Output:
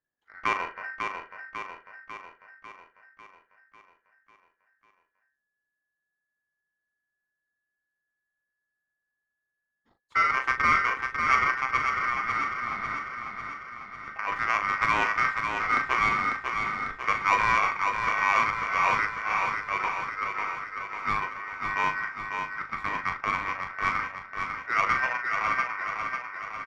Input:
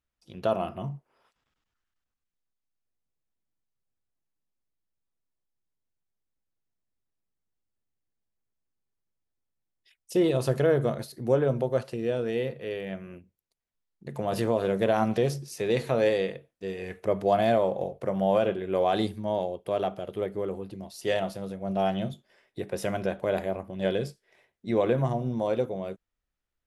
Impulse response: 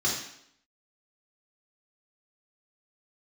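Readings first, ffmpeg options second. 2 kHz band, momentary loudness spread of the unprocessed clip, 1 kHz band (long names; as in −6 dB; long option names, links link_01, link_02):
+15.0 dB, 14 LU, +8.5 dB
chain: -filter_complex "[0:a]aeval=exprs='val(0)*sin(2*PI*1700*n/s)':channel_layout=same,adynamicsmooth=sensitivity=0.5:basefreq=1300,asplit=2[link_01][link_02];[link_02]adelay=39,volume=-8.5dB[link_03];[link_01][link_03]amix=inputs=2:normalize=0,aecho=1:1:547|1094|1641|2188|2735|3282|3829|4376:0.531|0.308|0.179|0.104|0.0601|0.0348|0.0202|0.0117,volume=5dB"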